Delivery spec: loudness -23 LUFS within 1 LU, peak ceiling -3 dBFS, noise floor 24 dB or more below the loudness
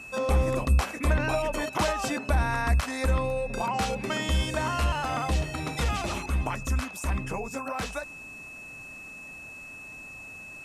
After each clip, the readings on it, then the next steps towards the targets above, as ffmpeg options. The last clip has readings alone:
steady tone 2600 Hz; tone level -41 dBFS; loudness -28.0 LUFS; peak -14.0 dBFS; loudness target -23.0 LUFS
-> -af "bandreject=f=2.6k:w=30"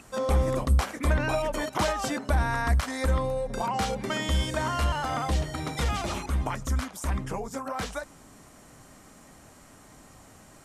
steady tone none; loudness -28.5 LUFS; peak -14.5 dBFS; loudness target -23.0 LUFS
-> -af "volume=5.5dB"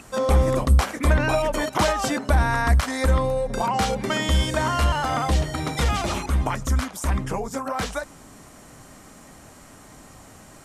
loudness -23.0 LUFS; peak -9.0 dBFS; noise floor -47 dBFS

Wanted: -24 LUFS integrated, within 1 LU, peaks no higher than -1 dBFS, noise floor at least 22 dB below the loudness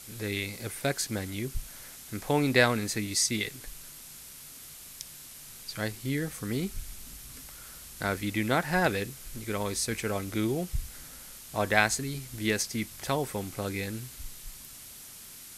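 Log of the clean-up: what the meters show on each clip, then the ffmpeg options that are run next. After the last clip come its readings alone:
noise floor -47 dBFS; noise floor target -52 dBFS; loudness -30.0 LUFS; peak -5.0 dBFS; loudness target -24.0 LUFS
-> -af "afftdn=nr=6:nf=-47"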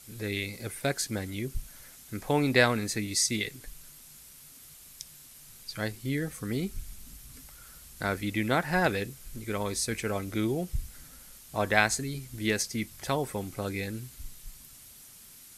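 noise floor -52 dBFS; noise floor target -53 dBFS
-> -af "afftdn=nr=6:nf=-52"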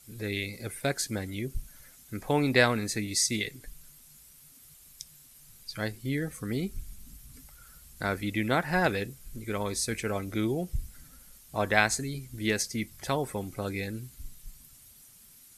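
noise floor -55 dBFS; loudness -30.5 LUFS; peak -5.0 dBFS; loudness target -24.0 LUFS
-> -af "volume=6.5dB,alimiter=limit=-1dB:level=0:latency=1"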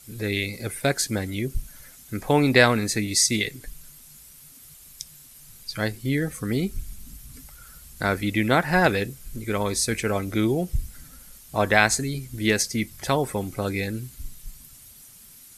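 loudness -24.0 LUFS; peak -1.0 dBFS; noise floor -49 dBFS

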